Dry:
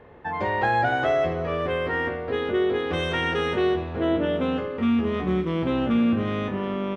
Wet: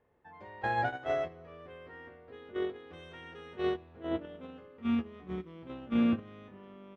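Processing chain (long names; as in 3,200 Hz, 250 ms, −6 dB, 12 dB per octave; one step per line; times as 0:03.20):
noise gate −20 dBFS, range −20 dB
level −3.5 dB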